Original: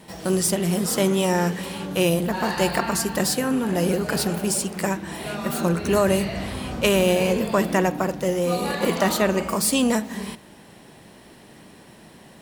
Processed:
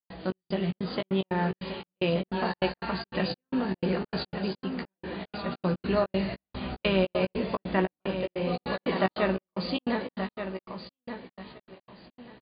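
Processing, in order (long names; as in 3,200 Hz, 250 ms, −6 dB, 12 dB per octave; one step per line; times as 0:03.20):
linear-phase brick-wall low-pass 4,900 Hz
on a send: repeating echo 1,177 ms, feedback 23%, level −9 dB
on the sum: gate pattern ".xx..xx.xx.x.xx" 149 BPM −60 dB
double-tracking delay 16 ms −6.5 dB
level −6.5 dB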